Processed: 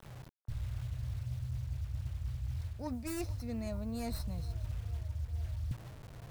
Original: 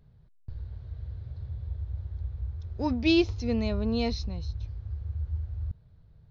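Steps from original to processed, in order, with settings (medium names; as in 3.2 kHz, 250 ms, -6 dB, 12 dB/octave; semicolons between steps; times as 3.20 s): tracing distortion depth 0.33 ms; graphic EQ with 31 bands 125 Hz +11 dB, 400 Hz -9 dB, 630 Hz +5 dB, 3.15 kHz -10 dB; bit crusher 9-bit; reverse; compression 12:1, threshold -37 dBFS, peak gain reduction 17.5 dB; reverse; peaking EQ 400 Hz -2 dB; on a send: feedback echo behind a band-pass 449 ms, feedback 78%, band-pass 850 Hz, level -16.5 dB; on the sum: trim +3 dB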